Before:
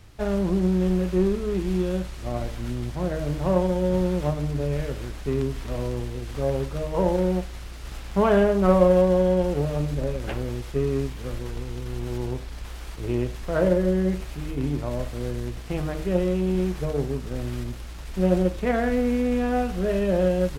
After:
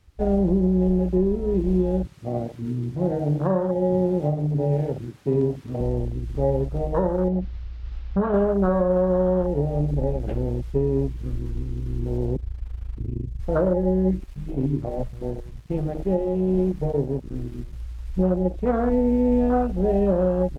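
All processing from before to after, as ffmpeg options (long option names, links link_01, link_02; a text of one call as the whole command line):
ffmpeg -i in.wav -filter_complex "[0:a]asettb=1/sr,asplit=3[link_01][link_02][link_03];[link_01]atrim=end=2.064[link_04];[link_02]atrim=start=2.06:end=5.81,asetpts=PTS-STARTPTS,afade=type=in:duration=0.004:curve=qsin,afade=type=out:start_time=3.746:duration=0.004:curve=qsin,highpass=frequency=94:width=0.5412,highpass=frequency=94:width=1.3066,asplit=2[link_05][link_06];[link_06]adelay=47,volume=-10.5dB[link_07];[link_05][link_07]amix=inputs=2:normalize=0,atrim=end_sample=165375[link_08];[link_03]atrim=start=5.806[link_09];[link_04][link_08]acrossfade=duration=0.004:curve1=hsin:curve2=qsin[link_10];[link_10][link_09]acrossfade=duration=0.004:curve1=qsin:curve2=hsin,asettb=1/sr,asplit=3[link_11][link_12][link_13];[link_11]atrim=end=7.284[link_14];[link_12]atrim=start=7.28:end=8.34,asetpts=PTS-STARTPTS,afade=type=in:duration=0.004:curve=qsin,afade=type=out:start_time=1.056:duration=0.004:curve=qsin,lowpass=frequency=5000:width=0.5412,lowpass=frequency=5000:width=1.3066,acompressor=threshold=-26dB:ratio=3:attack=3.2:release=140:knee=1:detection=peak,equalizer=frequency=190:width_type=o:width=0.25:gain=5.5[link_15];[link_13]atrim=start=8.336[link_16];[link_14][link_15]acrossfade=duration=0.004:curve1=hsin:curve2=qsin[link_17];[link_17][link_16]acrossfade=duration=0.004:curve1=qsin:curve2=hsin,asettb=1/sr,asplit=3[link_18][link_19][link_20];[link_18]atrim=end=12.364[link_21];[link_19]atrim=start=12.36:end=13.4,asetpts=PTS-STARTPTS,afade=type=in:duration=0.004:curve=qsin,afade=type=out:start_time=1.036:duration=0.004:curve=qsin,lowshelf=frequency=460:gain=8.5,acrossover=split=120|3500[link_22][link_23][link_24];[link_22]acompressor=threshold=-30dB:ratio=4[link_25];[link_23]acompressor=threshold=-33dB:ratio=4[link_26];[link_24]acompressor=threshold=-57dB:ratio=4[link_27];[link_25][link_26][link_27]amix=inputs=3:normalize=0,tremolo=f=26:d=0.824[link_28];[link_20]atrim=start=13.396[link_29];[link_21][link_28]acrossfade=duration=0.004:curve1=hsin:curve2=qsin[link_30];[link_30][link_29]acrossfade=duration=0.004:curve1=qsin:curve2=hsin,asettb=1/sr,asplit=3[link_31][link_32][link_33];[link_31]atrim=end=14.174[link_34];[link_32]atrim=start=14.17:end=17.73,asetpts=PTS-STARTPTS,afade=type=in:duration=0.004:curve=qsin,afade=type=out:start_time=3.556:duration=0.004:curve=qsin,bandreject=frequency=60:width_type=h:width=6,bandreject=frequency=120:width_type=h:width=6,bandreject=frequency=180:width_type=h:width=6,bandreject=frequency=240:width_type=h:width=6,bandreject=frequency=300:width_type=h:width=6,aeval=exprs='sgn(val(0))*max(abs(val(0))-0.00596,0)':channel_layout=same[link_35];[link_33]atrim=start=17.726[link_36];[link_34][link_35]acrossfade=duration=0.004:curve1=hsin:curve2=qsin[link_37];[link_37][link_36]acrossfade=duration=0.004:curve1=qsin:curve2=hsin,bandreject=frequency=660:width=17,afwtdn=0.0562,alimiter=limit=-16dB:level=0:latency=1:release=415,volume=4.5dB" out.wav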